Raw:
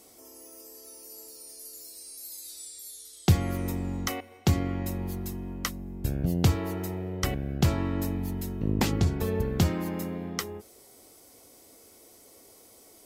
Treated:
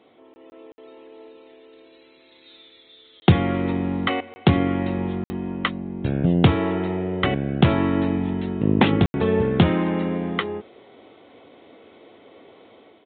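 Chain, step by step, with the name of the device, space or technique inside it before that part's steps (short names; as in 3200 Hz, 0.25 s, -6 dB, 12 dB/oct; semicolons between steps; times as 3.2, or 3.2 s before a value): call with lost packets (HPF 140 Hz 12 dB/oct; downsampling 8000 Hz; AGC gain up to 7 dB; packet loss packets of 20 ms bursts); gain +3.5 dB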